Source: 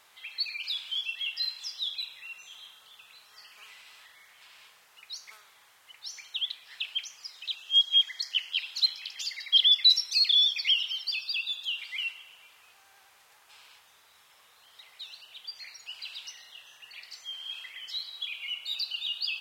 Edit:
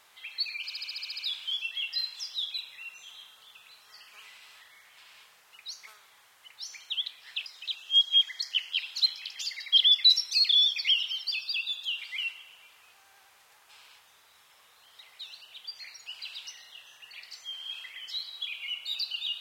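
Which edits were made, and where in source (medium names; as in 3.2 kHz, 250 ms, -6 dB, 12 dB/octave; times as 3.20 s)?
0.63 s: stutter 0.07 s, 9 plays
6.90–7.26 s: delete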